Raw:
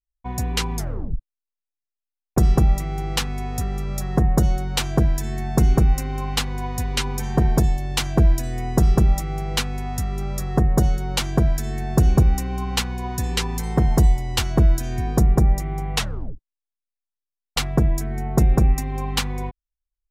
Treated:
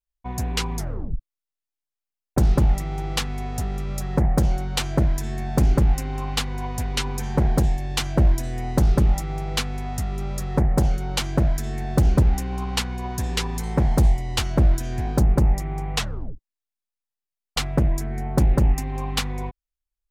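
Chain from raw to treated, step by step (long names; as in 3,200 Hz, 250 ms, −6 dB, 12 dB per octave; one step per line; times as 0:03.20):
highs frequency-modulated by the lows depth 0.55 ms
level −1.5 dB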